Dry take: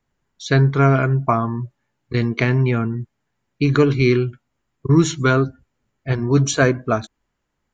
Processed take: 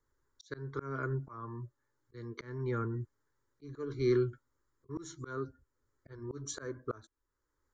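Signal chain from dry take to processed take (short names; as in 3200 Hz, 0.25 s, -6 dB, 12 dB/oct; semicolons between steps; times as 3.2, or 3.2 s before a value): fixed phaser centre 710 Hz, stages 6; auto swell 0.736 s; gain -3.5 dB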